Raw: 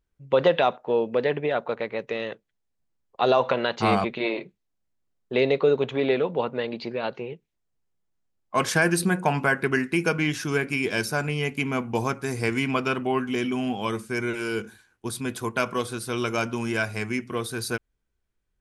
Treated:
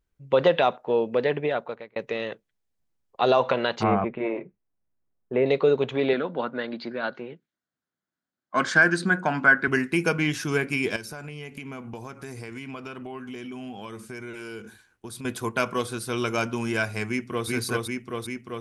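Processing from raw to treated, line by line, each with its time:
1.47–1.96 s: fade out
3.83–5.46 s: Bessel low-pass 1.5 kHz, order 6
6.13–9.68 s: cabinet simulation 190–6700 Hz, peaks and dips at 260 Hz +4 dB, 440 Hz -8 dB, 870 Hz -4 dB, 1.5 kHz +9 dB, 2.6 kHz -8 dB, 5.7 kHz -6 dB
10.96–15.25 s: compression 5:1, threshold -35 dBFS
17.08–17.48 s: echo throw 390 ms, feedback 75%, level -1 dB

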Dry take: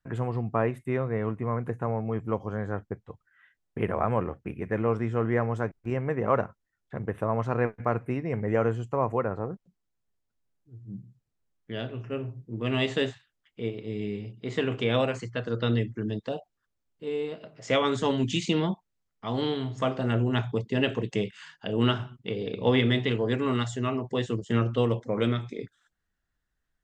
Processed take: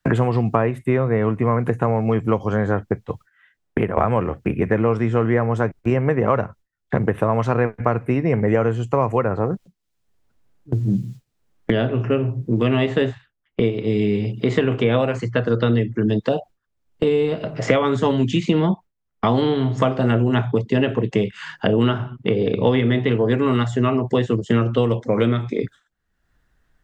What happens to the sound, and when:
2.93–3.97 s: fade out, to -16 dB
whole clip: gate with hold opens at -45 dBFS; treble shelf 3.1 kHz -8.5 dB; three bands compressed up and down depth 100%; trim +8.5 dB

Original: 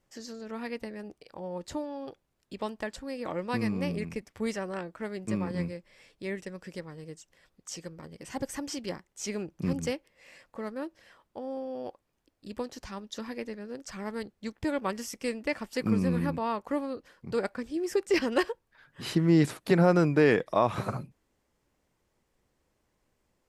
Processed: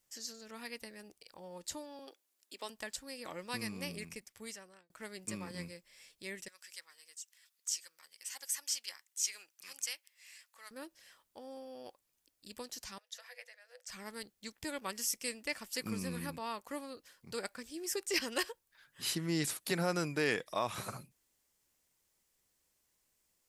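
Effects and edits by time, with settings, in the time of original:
1.99–2.70 s: steep high-pass 250 Hz
4.04–4.90 s: fade out
6.48–10.71 s: high-pass 1.3 kHz
12.98–13.90 s: rippled Chebyshev high-pass 480 Hz, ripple 9 dB
whole clip: pre-emphasis filter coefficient 0.9; trim +6.5 dB

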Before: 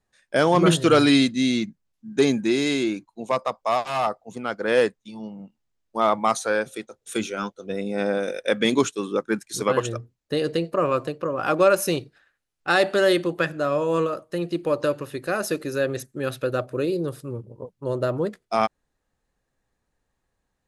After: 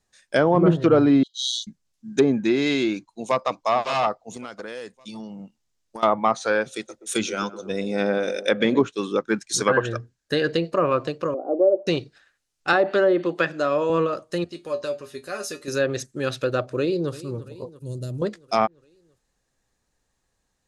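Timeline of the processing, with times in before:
1.23–1.67 s: brick-wall FIR high-pass 2.9 kHz
2.94–3.49 s: echo throw 560 ms, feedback 25%, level -9.5 dB
4.31–6.03 s: compression 16:1, threshold -32 dBFS
6.68–8.82 s: band-passed feedback delay 124 ms, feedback 76%, band-pass 410 Hz, level -13 dB
9.58–10.53 s: peaking EQ 1.6 kHz +14.5 dB 0.24 oct
11.34–11.87 s: elliptic band-pass 270–690 Hz, stop band 60 dB
12.73–13.90 s: high-pass 190 Hz
14.44–15.68 s: feedback comb 82 Hz, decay 0.15 s, harmonics odd, mix 90%
16.71–17.14 s: echo throw 340 ms, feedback 65%, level -18 dB
17.79–18.22 s: FFT filter 160 Hz 0 dB, 1.1 kHz -27 dB, 9.9 kHz +1 dB
whole clip: low-pass that closes with the level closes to 880 Hz, closed at -14 dBFS; peaking EQ 6.3 kHz +9 dB 1.7 oct; trim +1 dB

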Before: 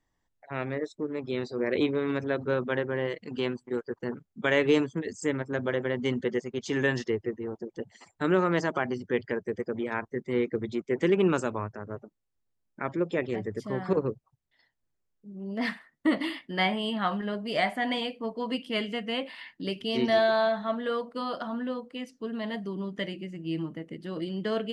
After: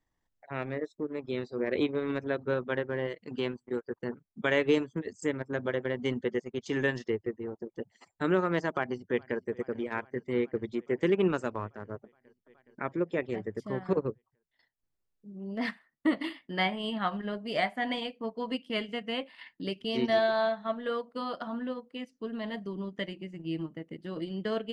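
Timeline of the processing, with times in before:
8.68–9.45 s: echo throw 420 ms, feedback 80%, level -18 dB
whole clip: transient shaper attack +1 dB, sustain -8 dB; treble shelf 6.9 kHz -4 dB; trim -2.5 dB

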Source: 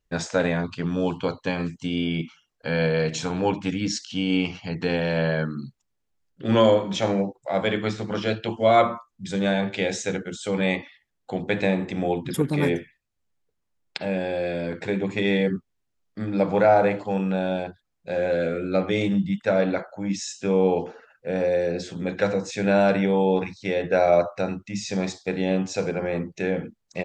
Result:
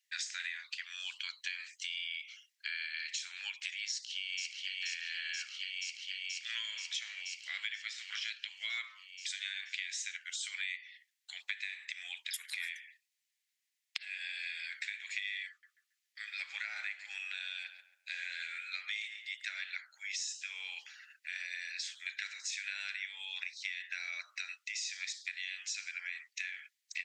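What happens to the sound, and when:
3.89–4.80 s: echo throw 480 ms, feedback 75%, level -3 dB
15.49–19.56 s: filtered feedback delay 138 ms, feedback 43%, low-pass 1.5 kHz, level -10 dB
whole clip: Chebyshev high-pass 1.9 kHz, order 4; compression 6:1, threshold -43 dBFS; trim +6 dB

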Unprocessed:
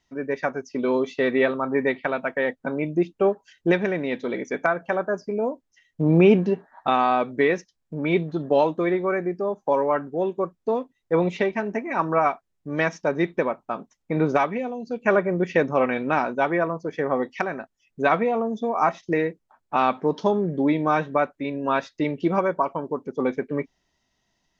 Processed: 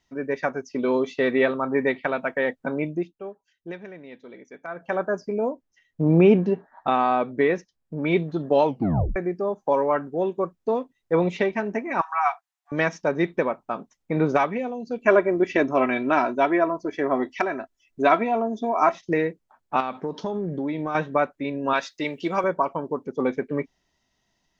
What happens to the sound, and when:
2.81–5.00 s: dip -16 dB, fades 0.34 s
5.52–7.98 s: treble shelf 2.3 kHz -6.5 dB
8.65 s: tape stop 0.51 s
12.01–12.72 s: brick-wall FIR high-pass 680 Hz
14.98–18.95 s: comb 3 ms
19.80–20.95 s: compression 5:1, threshold -24 dBFS
21.73–22.44 s: tilt EQ +3 dB/octave

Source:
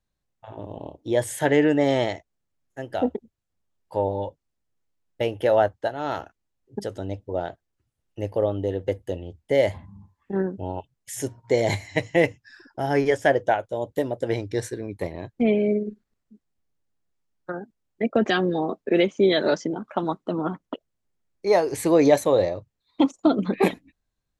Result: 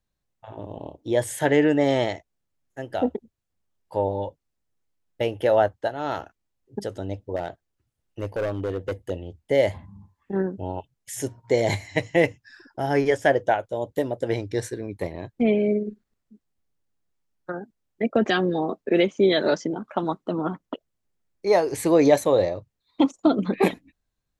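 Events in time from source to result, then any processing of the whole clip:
7.36–9.10 s: overload inside the chain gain 22.5 dB

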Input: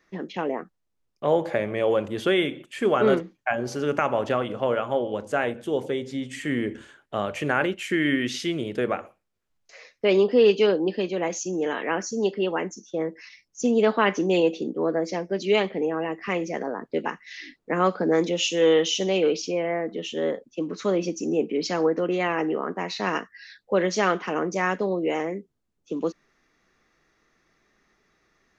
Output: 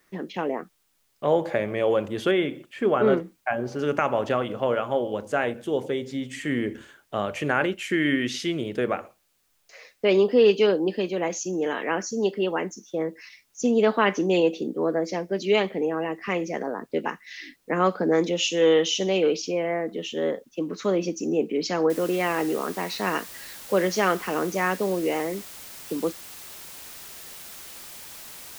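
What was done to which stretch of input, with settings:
2.31–3.79 s: low-pass 2 kHz 6 dB/octave
21.90 s: noise floor step -70 dB -42 dB

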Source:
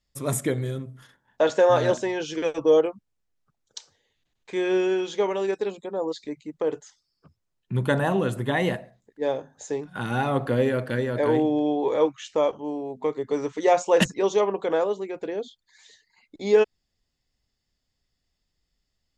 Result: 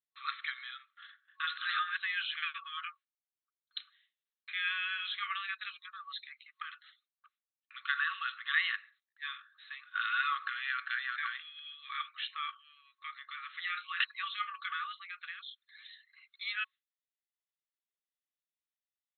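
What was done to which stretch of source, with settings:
1.57–1.98 s: reverse
14.24–14.91 s: comb of notches 270 Hz
whole clip: peak limiter -16 dBFS; FFT band-pass 1.1–4.2 kHz; gate with hold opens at -60 dBFS; trim +2.5 dB

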